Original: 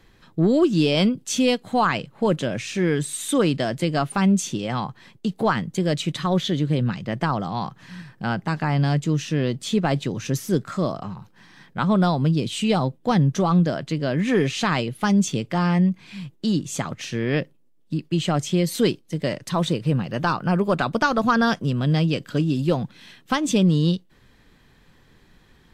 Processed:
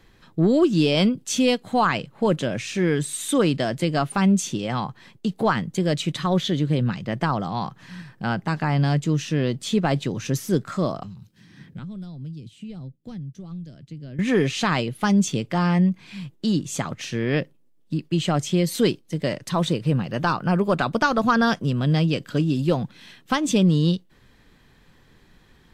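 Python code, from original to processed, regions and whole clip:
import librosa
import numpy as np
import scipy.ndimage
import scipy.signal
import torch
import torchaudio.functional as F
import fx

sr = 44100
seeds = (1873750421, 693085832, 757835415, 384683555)

y = fx.chain(x, sr, fx.tone_stack(knobs='10-0-1'),
    fx.band_squash(depth_pct=100), at=(11.03, 14.19))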